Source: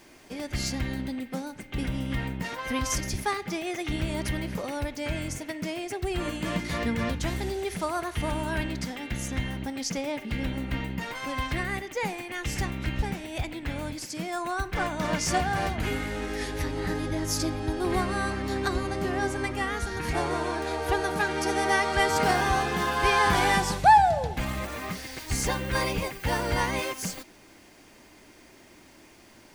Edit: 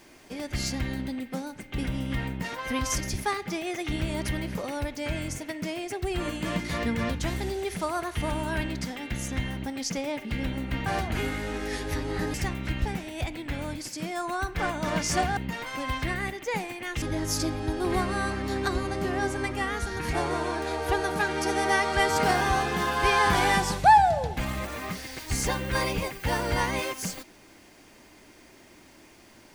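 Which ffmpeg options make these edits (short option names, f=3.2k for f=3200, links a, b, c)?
-filter_complex "[0:a]asplit=5[a][b][c][d][e];[a]atrim=end=10.862[f];[b]atrim=start=15.538:end=17.022[g];[c]atrim=start=12.508:end=15.542[h];[d]atrim=start=10.858:end=12.512[i];[e]atrim=start=17.018[j];[f][g]acrossfade=d=0.004:c1=hsin:c2=hsin[k];[k][h]acrossfade=d=0.004:c1=hsin:c2=hsin[l];[l][i]acrossfade=d=0.004:c1=hsin:c2=hsin[m];[m][j]acrossfade=d=0.004:c1=hsin:c2=hsin"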